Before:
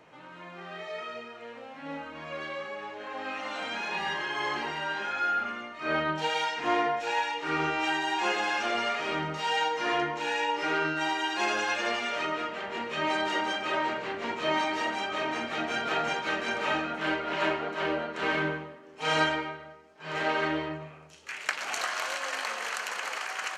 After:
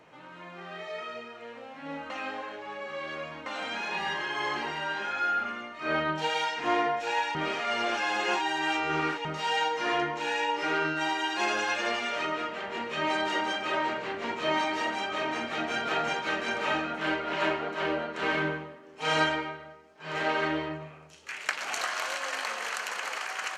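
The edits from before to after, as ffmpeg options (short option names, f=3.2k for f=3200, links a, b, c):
-filter_complex "[0:a]asplit=5[a][b][c][d][e];[a]atrim=end=2.102[f];[b]atrim=start=2.098:end=3.462,asetpts=PTS-STARTPTS,areverse[g];[c]atrim=start=3.458:end=7.352[h];[d]atrim=start=7.348:end=9.252,asetpts=PTS-STARTPTS,areverse[i];[e]atrim=start=9.248[j];[f][g]acrossfade=d=0.004:c1=hsin:c2=hsin[k];[k][h]acrossfade=d=0.004:c1=hsin:c2=hsin[l];[l][i]acrossfade=d=0.004:c1=hsin:c2=hsin[m];[m][j]acrossfade=d=0.004:c1=hsin:c2=hsin"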